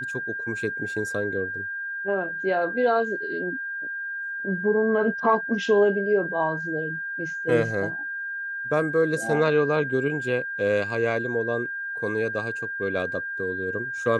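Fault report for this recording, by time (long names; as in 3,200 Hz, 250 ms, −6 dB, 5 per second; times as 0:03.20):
whistle 1,600 Hz −29 dBFS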